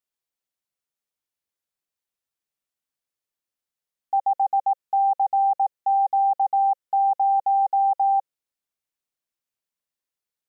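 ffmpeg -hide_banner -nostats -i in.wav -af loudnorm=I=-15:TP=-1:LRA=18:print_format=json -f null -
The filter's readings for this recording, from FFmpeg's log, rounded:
"input_i" : "-22.0",
"input_tp" : "-16.0",
"input_lra" : "6.0",
"input_thresh" : "-32.0",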